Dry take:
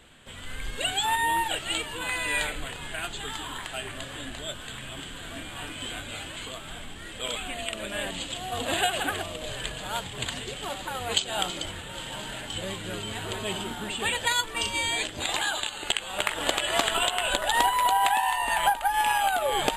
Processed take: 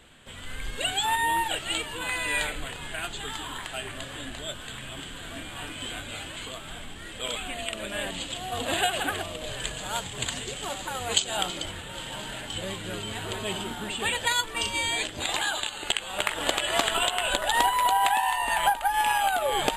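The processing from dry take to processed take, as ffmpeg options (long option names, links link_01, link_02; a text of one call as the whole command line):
ffmpeg -i in.wav -filter_complex "[0:a]asettb=1/sr,asplit=3[link_01][link_02][link_03];[link_01]atrim=end=9.604[link_04];[link_02]atrim=start=9.6:end=11.37,asetpts=PTS-STARTPTS,afade=type=in:duration=0.004:curve=qsin,afade=type=out:start_time=1.766:duration=0.004:curve=qsin,equalizer=frequency=6900:width_type=o:width=0.7:gain=6[link_05];[link_03]atrim=start=11.366[link_06];[link_04][link_05]acrossfade=duration=0.004:curve1=hsin:curve2=qsin[link_07];[link_07][link_06]acrossfade=duration=0.004:curve1=qsin:curve2=hsin" out.wav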